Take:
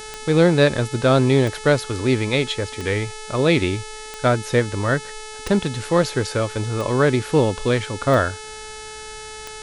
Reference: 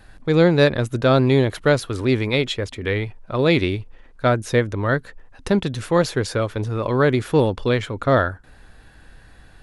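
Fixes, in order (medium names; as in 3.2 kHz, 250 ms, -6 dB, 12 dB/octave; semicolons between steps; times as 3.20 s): de-click; de-hum 432.6 Hz, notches 24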